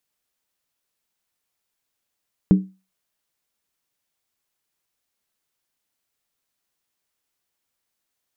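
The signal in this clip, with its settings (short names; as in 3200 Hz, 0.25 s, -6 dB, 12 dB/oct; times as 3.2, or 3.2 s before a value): skin hit, lowest mode 189 Hz, decay 0.29 s, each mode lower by 9 dB, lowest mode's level -6.5 dB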